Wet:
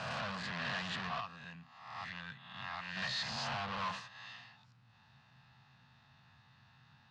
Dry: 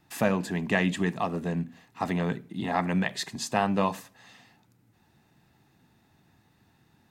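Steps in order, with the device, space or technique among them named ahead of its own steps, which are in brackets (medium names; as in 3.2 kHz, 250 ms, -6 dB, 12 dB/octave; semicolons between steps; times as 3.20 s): reverse spectral sustain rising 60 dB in 0.87 s; 1.20–2.97 s: amplifier tone stack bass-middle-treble 5-5-5; scooped metal amplifier (valve stage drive 36 dB, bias 0.45; cabinet simulation 90–4100 Hz, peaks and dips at 130 Hz +8 dB, 240 Hz +9 dB, 410 Hz -4 dB, 1.1 kHz +5 dB, 2.2 kHz -7 dB, 3.5 kHz -4 dB; amplifier tone stack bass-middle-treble 10-0-10); trim +9.5 dB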